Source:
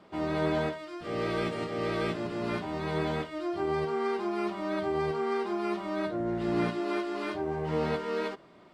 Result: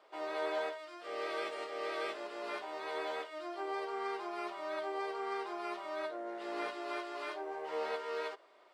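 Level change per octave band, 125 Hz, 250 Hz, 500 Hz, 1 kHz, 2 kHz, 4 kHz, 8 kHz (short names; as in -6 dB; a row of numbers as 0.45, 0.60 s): under -35 dB, -16.0 dB, -8.0 dB, -4.5 dB, -4.5 dB, -4.5 dB, n/a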